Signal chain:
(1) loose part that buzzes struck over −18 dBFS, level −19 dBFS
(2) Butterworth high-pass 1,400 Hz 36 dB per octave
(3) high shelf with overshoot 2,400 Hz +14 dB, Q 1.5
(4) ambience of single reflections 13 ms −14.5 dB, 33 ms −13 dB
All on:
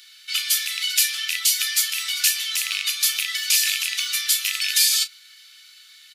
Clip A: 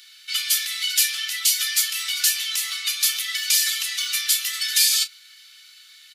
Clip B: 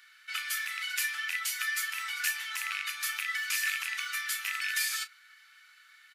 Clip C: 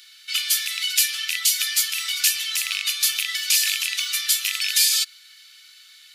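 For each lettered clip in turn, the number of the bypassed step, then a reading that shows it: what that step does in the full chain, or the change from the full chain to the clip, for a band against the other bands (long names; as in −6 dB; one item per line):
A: 1, 2 kHz band −1.5 dB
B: 3, 1 kHz band +18.0 dB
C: 4, echo-to-direct ratio −10.5 dB to none audible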